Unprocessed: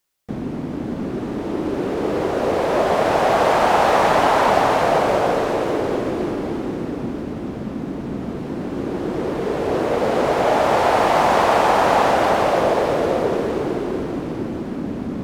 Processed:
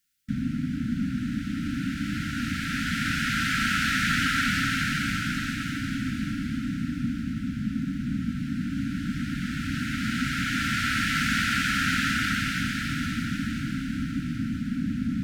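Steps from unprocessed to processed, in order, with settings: brick-wall FIR band-stop 290–1300 Hz

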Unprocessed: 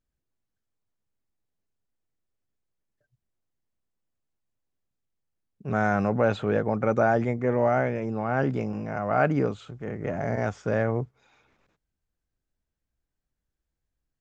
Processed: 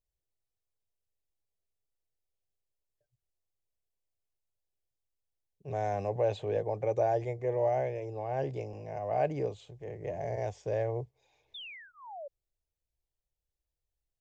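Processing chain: painted sound fall, 11.54–12.28 s, 540–3700 Hz -37 dBFS; static phaser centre 560 Hz, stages 4; trim -4.5 dB

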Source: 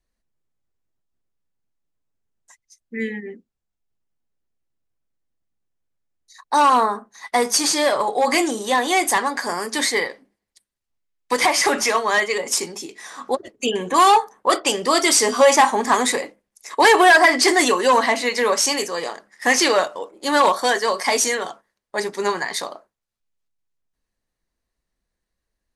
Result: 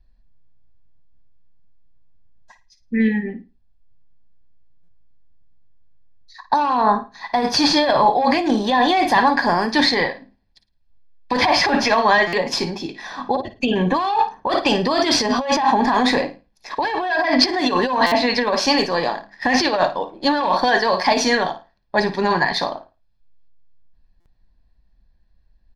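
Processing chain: tilt EQ -3 dB/octave; flutter echo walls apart 9.4 m, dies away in 0.27 s; compressor with a negative ratio -19 dBFS, ratio -1; resonant high shelf 6 kHz -10.5 dB, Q 3; comb 1.2 ms, depth 50%; buffer glitch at 4.83/12.27/18.06/24.20 s, samples 256, times 9; trim +2 dB

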